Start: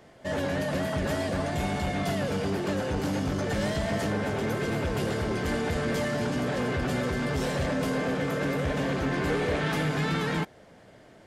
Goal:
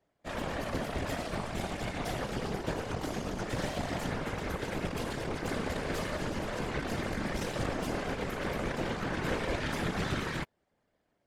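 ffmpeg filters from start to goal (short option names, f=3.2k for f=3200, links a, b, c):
-af "aeval=exprs='0.158*(cos(1*acos(clip(val(0)/0.158,-1,1)))-cos(1*PI/2))+0.0355*(cos(4*acos(clip(val(0)/0.158,-1,1)))-cos(4*PI/2))+0.02*(cos(7*acos(clip(val(0)/0.158,-1,1)))-cos(7*PI/2))':c=same,afftfilt=real='hypot(re,im)*cos(2*PI*random(0))':imag='hypot(re,im)*sin(2*PI*random(1))':win_size=512:overlap=0.75"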